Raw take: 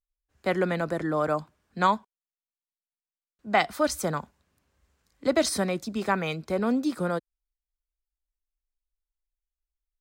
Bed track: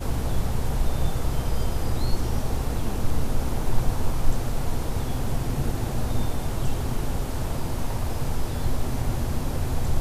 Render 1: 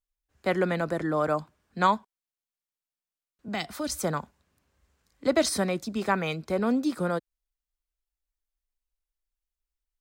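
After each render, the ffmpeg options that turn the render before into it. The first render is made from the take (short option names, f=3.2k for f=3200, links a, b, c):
-filter_complex "[0:a]asettb=1/sr,asplit=3[a][b][c];[a]atrim=end=3.484[d];[b]atrim=start=3.48:end=3.92,asetpts=PTS-STARTPTS,afade=t=in:d=0.004:c=qsin,afade=t=out:st=0.436:d=0.004:c=qsin,acrossover=split=310|3000[e][f][g];[f]acompressor=threshold=-37dB:ratio=3:attack=3.2:release=140:knee=2.83:detection=peak[h];[e][h][g]amix=inputs=3:normalize=0[i];[c]atrim=start=3.916[j];[d][i]acrossfade=d=0.004:c1=hsin:c2=qsin[k];[k][j]acrossfade=d=0.004:c1=qsin:c2=hsin"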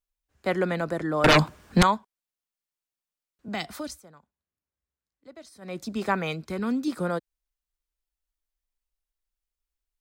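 -filter_complex "[0:a]asettb=1/sr,asplit=3[a][b][c];[a]atrim=end=1.244[d];[b]atrim=start=1.24:end=1.83,asetpts=PTS-STARTPTS,afade=t=in:d=0.004:c=qsin,afade=t=out:st=0.586:d=0.004:c=qsin,aeval=exprs='0.237*sin(PI/2*5.62*val(0)/0.237)':c=same[e];[c]atrim=start=1.826[f];[d][e]acrossfade=d=0.004:c1=hsin:c2=qsin[g];[g][f]acrossfade=d=0.004:c1=qsin:c2=hsin,asettb=1/sr,asplit=3[h][i][j];[h]atrim=end=6.454[k];[i]atrim=start=6.45:end=6.88,asetpts=PTS-STARTPTS,afade=t=in:d=0.004:c=qsin,afade=t=out:st=0.426:d=0.004:c=qsin,equalizer=f=620:w=1.5:g=-11[l];[j]atrim=start=6.876[m];[k][l]acrossfade=d=0.004:c1=hsin:c2=qsin[n];[n][m]acrossfade=d=0.004:c1=qsin:c2=hsin,asplit=3[o][p][q];[o]atrim=end=4.01,asetpts=PTS-STARTPTS,afade=t=out:st=3.75:d=0.26:silence=0.0668344[r];[p]atrim=start=4.01:end=5.61,asetpts=PTS-STARTPTS,volume=-23.5dB[s];[q]atrim=start=5.61,asetpts=PTS-STARTPTS,afade=t=in:d=0.26:silence=0.0668344[t];[r][s][t]concat=n=3:v=0:a=1"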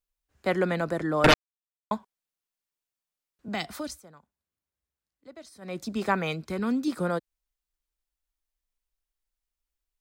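-filter_complex "[0:a]asplit=3[a][b][c];[a]atrim=end=1.34,asetpts=PTS-STARTPTS,afade=t=out:st=1.336:d=0.004:c=hsin[d];[b]atrim=start=1.34:end=1.91,asetpts=PTS-STARTPTS,volume=0[e];[c]atrim=start=1.91,asetpts=PTS-STARTPTS,afade=t=in:d=0.004:c=hsin[f];[d][e][f]concat=n=3:v=0:a=1"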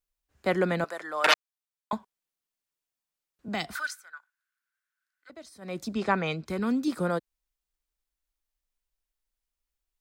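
-filter_complex "[0:a]asettb=1/sr,asplit=3[a][b][c];[a]atrim=end=0.844[d];[b]atrim=start=0.84:end=1.93,asetpts=PTS-STARTPTS,afade=t=in:d=0.004:c=qsin,afade=t=out:st=1.086:d=0.004:c=qsin,highpass=820[e];[c]atrim=start=1.926[f];[d][e]acrossfade=d=0.004:c1=hsin:c2=qsin[g];[g][f]acrossfade=d=0.004:c1=qsin:c2=hsin,asettb=1/sr,asplit=3[h][i][j];[h]atrim=end=3.754[k];[i]atrim=start=3.75:end=5.3,asetpts=PTS-STARTPTS,afade=t=in:d=0.004:c=qsin,afade=t=out:st=1.546:d=0.004:c=qsin,highpass=f=1.5k:t=q:w=11[l];[j]atrim=start=5.296[m];[k][l]acrossfade=d=0.004:c1=hsin:c2=qsin[n];[n][m]acrossfade=d=0.004:c1=qsin:c2=hsin,asettb=1/sr,asplit=3[o][p][q];[o]atrim=end=5.944[r];[p]atrim=start=5.94:end=6.46,asetpts=PTS-STARTPTS,afade=t=in:d=0.004:c=qsin,afade=t=out:st=0.516:d=0.004:c=qsin,lowpass=6.2k[s];[q]atrim=start=6.456[t];[r][s]acrossfade=d=0.004:c1=hsin:c2=qsin[u];[u][t]acrossfade=d=0.004:c1=qsin:c2=hsin"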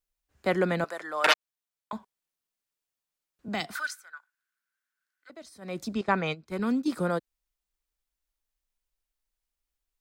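-filter_complex "[0:a]asplit=3[a][b][c];[a]afade=t=out:st=1.32:d=0.02[d];[b]acompressor=threshold=-31dB:ratio=6:attack=3.2:release=140:knee=1:detection=peak,afade=t=in:st=1.32:d=0.02,afade=t=out:st=1.94:d=0.02[e];[c]afade=t=in:st=1.94:d=0.02[f];[d][e][f]amix=inputs=3:normalize=0,asettb=1/sr,asplit=3[g][h][i];[g]atrim=end=3.604[j];[h]atrim=start=3.6:end=5.42,asetpts=PTS-STARTPTS,afade=t=in:d=0.004:c=qsin,afade=t=out:st=1.816:d=0.004:c=qsin,highpass=140[k];[i]atrim=start=5.416[l];[j][k]acrossfade=d=0.004:c1=hsin:c2=qsin[m];[m][l]acrossfade=d=0.004:c1=qsin:c2=hsin,asettb=1/sr,asplit=3[n][o][p];[n]atrim=end=6.014[q];[o]atrim=start=6.01:end=6.88,asetpts=PTS-STARTPTS,afade=t=in:d=0.004:c=qsin,afade=t=out:st=0.866:d=0.004:c=qsin,agate=range=-13dB:threshold=-32dB:ratio=16:release=100:detection=peak[r];[p]atrim=start=6.876[s];[q][r]acrossfade=d=0.004:c1=hsin:c2=qsin[t];[t][s]acrossfade=d=0.004:c1=qsin:c2=hsin"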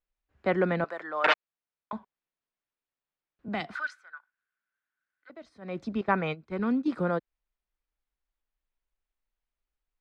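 -af "lowpass=2.6k"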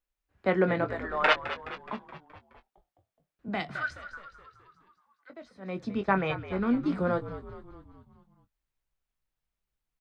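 -filter_complex "[0:a]asplit=2[a][b];[b]adelay=21,volume=-9dB[c];[a][c]amix=inputs=2:normalize=0,asplit=7[d][e][f][g][h][i][j];[e]adelay=211,afreqshift=-63,volume=-12.5dB[k];[f]adelay=422,afreqshift=-126,volume=-17.4dB[l];[g]adelay=633,afreqshift=-189,volume=-22.3dB[m];[h]adelay=844,afreqshift=-252,volume=-27.1dB[n];[i]adelay=1055,afreqshift=-315,volume=-32dB[o];[j]adelay=1266,afreqshift=-378,volume=-36.9dB[p];[d][k][l][m][n][o][p]amix=inputs=7:normalize=0"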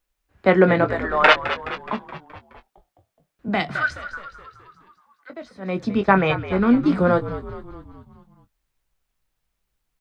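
-af "volume=10dB,alimiter=limit=-2dB:level=0:latency=1"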